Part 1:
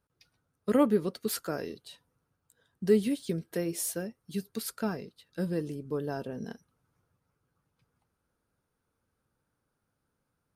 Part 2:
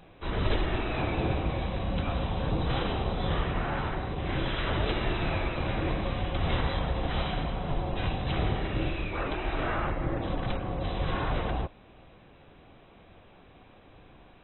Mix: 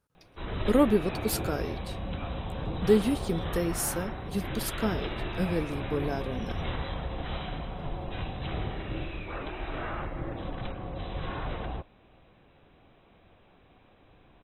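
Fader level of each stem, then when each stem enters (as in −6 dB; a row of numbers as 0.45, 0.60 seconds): +2.0, −5.0 decibels; 0.00, 0.15 seconds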